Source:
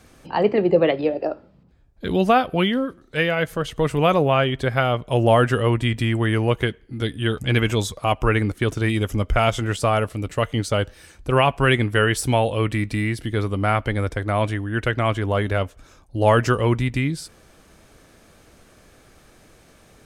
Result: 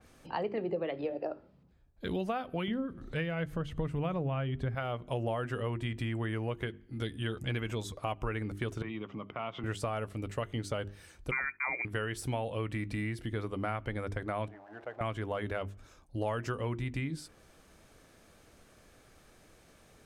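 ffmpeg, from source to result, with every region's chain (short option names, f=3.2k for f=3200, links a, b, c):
-filter_complex "[0:a]asettb=1/sr,asplit=3[a][b][c];[a]atrim=end=2.684[d];[b]atrim=start=2.68:end=4.75,asetpts=PTS-STARTPTS,afade=t=in:d=0.004:c=qsin,afade=t=out:st=2.066:d=0.004:c=qsin,bass=f=250:g=11,treble=f=4k:g=-5,acompressor=mode=upward:threshold=-25dB:ratio=2.5:attack=3.2:release=140:knee=2.83:detection=peak[e];[c]atrim=start=4.746[f];[d][e]acrossfade=d=0.004:c1=hsin:c2=qsin[g];[g][f]acrossfade=d=0.004:c1=qsin:c2=hsin,asettb=1/sr,asplit=3[h][i][j];[h]atrim=end=8.824[k];[i]atrim=start=8.82:end=9.64,asetpts=PTS-STARTPTS,afade=t=in:d=0.004:c=qsin,afade=t=out:st=0.816:d=0.004:c=qsin,acompressor=threshold=-24dB:ratio=5:attack=3.2:release=140:knee=1:detection=peak,highpass=f=140:w=0.5412,highpass=f=140:w=1.3066,equalizer=f=510:t=q:w=4:g=-3,equalizer=f=1.1k:t=q:w=4:g=8,equalizer=f=1.6k:t=q:w=4:g=-7,lowpass=f=3.4k:w=0.5412,lowpass=f=3.4k:w=1.3066[l];[j]atrim=start=9.636[m];[k][l]acrossfade=d=0.004:c1=hsin:c2=qsin[n];[n][m]acrossfade=d=0.004:c1=qsin:c2=hsin,asettb=1/sr,asplit=3[o][p][q];[o]atrim=end=11.314[r];[p]atrim=start=11.31:end=11.85,asetpts=PTS-STARTPTS,afade=t=in:d=0.004:c=qsin,afade=t=out:st=0.536:d=0.004:c=qsin,highpass=53,agate=range=-19dB:threshold=-37dB:ratio=16:release=100:detection=peak,lowpass=f=2.1k:t=q:w=0.5098,lowpass=f=2.1k:t=q:w=0.6013,lowpass=f=2.1k:t=q:w=0.9,lowpass=f=2.1k:t=q:w=2.563,afreqshift=-2500[s];[q]atrim=start=11.846[t];[r][s]acrossfade=d=0.004:c1=hsin:c2=qsin[u];[u][t]acrossfade=d=0.004:c1=qsin:c2=hsin,asettb=1/sr,asplit=3[v][w][x];[v]atrim=end=14.484[y];[w]atrim=start=14.48:end=15.01,asetpts=PTS-STARTPTS,afade=t=in:d=0.004:c=qsin,afade=t=out:st=0.526:d=0.004:c=qsin,aeval=exprs='val(0)+0.5*0.0447*sgn(val(0))':c=same,bandpass=f=710:t=q:w=3.8[z];[x]atrim=start=15.006[aa];[y][z]acrossfade=d=0.004:c1=hsin:c2=qsin[ab];[ab][aa]acrossfade=d=0.004:c1=qsin:c2=hsin,bandreject=f=50:t=h:w=6,bandreject=f=100:t=h:w=6,bandreject=f=150:t=h:w=6,bandreject=f=200:t=h:w=6,bandreject=f=250:t=h:w=6,bandreject=f=300:t=h:w=6,bandreject=f=350:t=h:w=6,bandreject=f=400:t=h:w=6,acompressor=threshold=-23dB:ratio=5,adynamicequalizer=threshold=0.00501:dfrequency=3100:dqfactor=0.7:tfrequency=3100:tqfactor=0.7:attack=5:release=100:ratio=0.375:range=2.5:mode=cutabove:tftype=highshelf,volume=-8dB"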